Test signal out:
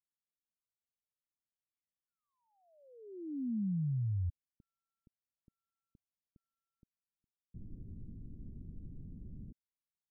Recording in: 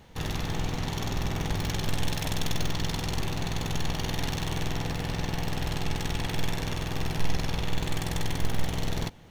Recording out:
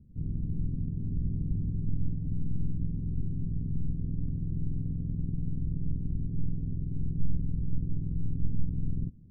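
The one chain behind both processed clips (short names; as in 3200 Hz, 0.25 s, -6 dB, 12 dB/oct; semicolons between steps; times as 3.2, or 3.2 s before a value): inverse Chebyshev low-pass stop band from 1500 Hz, stop band 80 dB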